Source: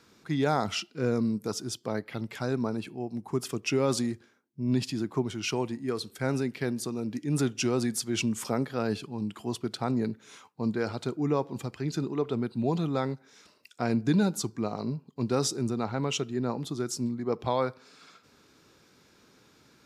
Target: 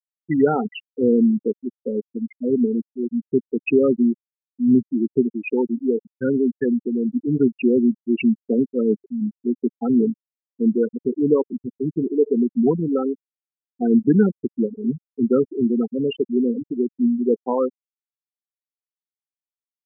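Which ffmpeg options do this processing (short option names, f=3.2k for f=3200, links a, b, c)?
-af "highpass=190,equalizer=f=240:t=q:w=4:g=6,equalizer=f=440:t=q:w=4:g=5,equalizer=f=640:t=q:w=4:g=-7,equalizer=f=1.1k:t=q:w=4:g=-5,equalizer=f=2k:t=q:w=4:g=6,lowpass=f=3k:w=0.5412,lowpass=f=3k:w=1.3066,afftfilt=real='re*gte(hypot(re,im),0.126)':imag='im*gte(hypot(re,im),0.126)':win_size=1024:overlap=0.75,volume=8.5dB"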